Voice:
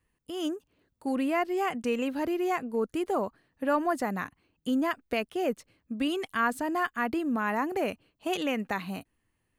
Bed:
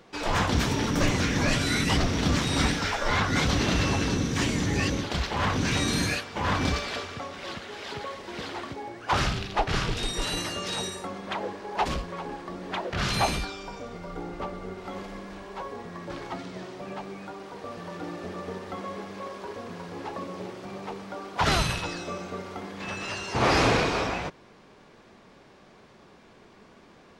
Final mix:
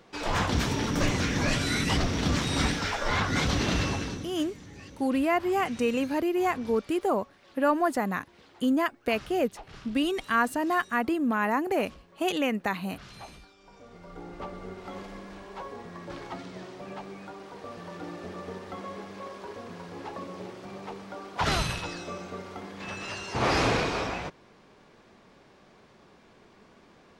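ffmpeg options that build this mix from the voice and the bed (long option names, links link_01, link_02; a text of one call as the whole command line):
ffmpeg -i stem1.wav -i stem2.wav -filter_complex "[0:a]adelay=3950,volume=2.5dB[link_01];[1:a]volume=15.5dB,afade=type=out:start_time=3.77:duration=0.58:silence=0.11885,afade=type=in:start_time=13.56:duration=1.06:silence=0.133352[link_02];[link_01][link_02]amix=inputs=2:normalize=0" out.wav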